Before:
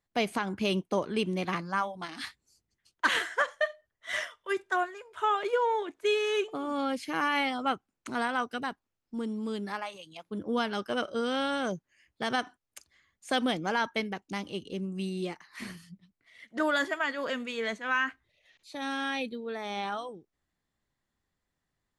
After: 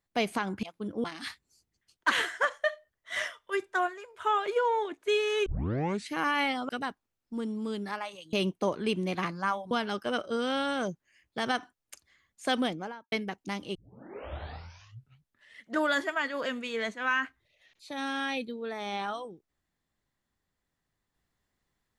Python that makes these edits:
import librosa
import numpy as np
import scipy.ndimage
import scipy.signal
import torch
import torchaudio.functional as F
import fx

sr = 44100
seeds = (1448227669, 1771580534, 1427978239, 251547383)

y = fx.studio_fade_out(x, sr, start_s=13.41, length_s=0.55)
y = fx.edit(y, sr, fx.swap(start_s=0.63, length_s=1.38, other_s=10.14, other_length_s=0.41),
    fx.tape_start(start_s=6.43, length_s=0.64),
    fx.cut(start_s=7.66, length_s=0.84),
    fx.tape_start(start_s=14.59, length_s=1.89), tone=tone)